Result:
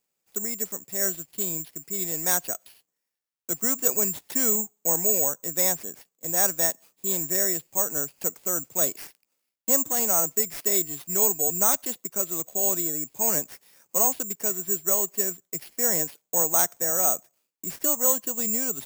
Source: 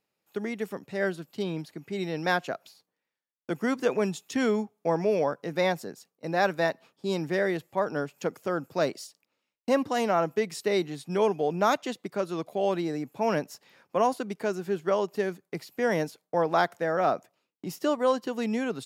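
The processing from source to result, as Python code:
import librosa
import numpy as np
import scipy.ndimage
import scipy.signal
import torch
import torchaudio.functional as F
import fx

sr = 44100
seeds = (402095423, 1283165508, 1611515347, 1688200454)

y = (np.kron(x[::6], np.eye(6)[0]) * 6)[:len(x)]
y = y * 10.0 ** (-5.5 / 20.0)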